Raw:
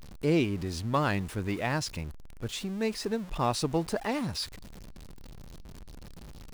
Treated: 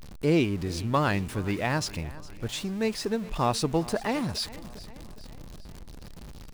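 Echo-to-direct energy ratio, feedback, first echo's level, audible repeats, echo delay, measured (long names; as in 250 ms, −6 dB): −17.5 dB, 55%, −19.0 dB, 4, 410 ms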